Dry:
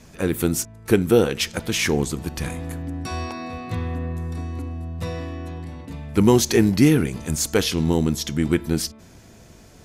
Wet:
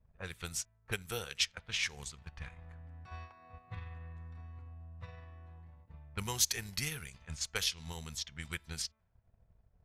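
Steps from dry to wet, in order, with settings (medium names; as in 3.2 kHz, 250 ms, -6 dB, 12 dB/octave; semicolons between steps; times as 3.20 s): level-controlled noise filter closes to 510 Hz, open at -15.5 dBFS; amplifier tone stack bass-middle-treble 10-0-10; transient shaper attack +5 dB, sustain -7 dB; trim -8 dB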